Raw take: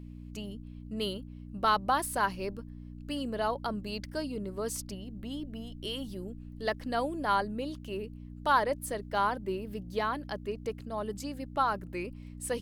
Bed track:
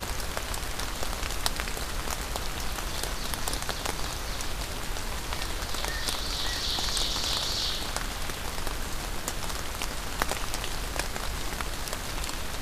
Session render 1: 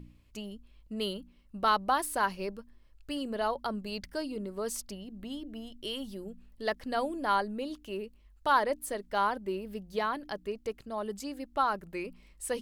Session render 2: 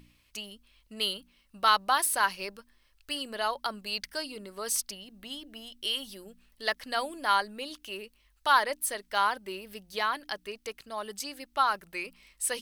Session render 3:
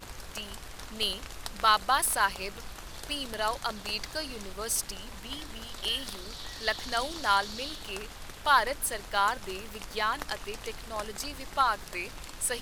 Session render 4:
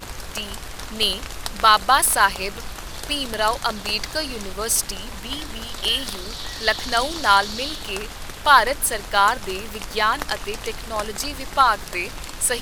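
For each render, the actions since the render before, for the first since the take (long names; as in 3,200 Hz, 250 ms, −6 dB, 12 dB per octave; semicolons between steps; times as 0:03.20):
hum removal 60 Hz, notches 5
tilt shelving filter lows −9.5 dB, about 800 Hz; notch filter 7,100 Hz, Q 13
mix in bed track −11 dB
level +9.5 dB; brickwall limiter −1 dBFS, peak gain reduction 1.5 dB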